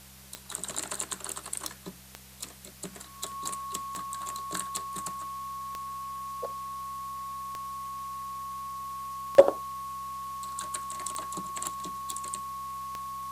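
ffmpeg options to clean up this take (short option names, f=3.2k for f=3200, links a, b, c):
-af "adeclick=t=4,bandreject=f=65.1:t=h:w=4,bandreject=f=130.2:t=h:w=4,bandreject=f=195.3:t=h:w=4,bandreject=f=1.1k:w=30,afwtdn=0.0028"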